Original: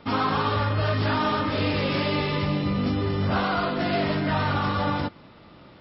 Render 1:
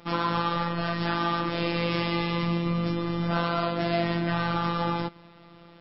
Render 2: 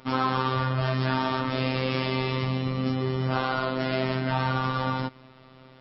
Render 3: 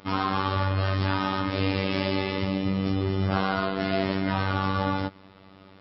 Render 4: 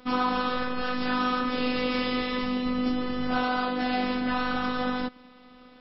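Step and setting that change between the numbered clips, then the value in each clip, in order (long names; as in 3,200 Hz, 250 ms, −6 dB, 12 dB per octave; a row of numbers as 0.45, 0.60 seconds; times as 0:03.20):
phases set to zero, frequency: 170, 130, 96, 250 Hertz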